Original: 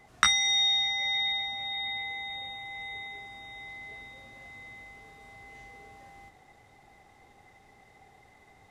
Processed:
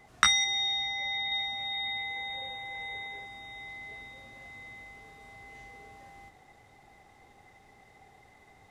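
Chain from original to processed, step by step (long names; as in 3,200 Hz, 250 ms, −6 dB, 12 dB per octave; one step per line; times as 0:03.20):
0:00.44–0:01.32: high-shelf EQ 3,300 Hz −9.5 dB
0:02.16–0:03.25: hollow resonant body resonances 520/910/1,600 Hz, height 11 dB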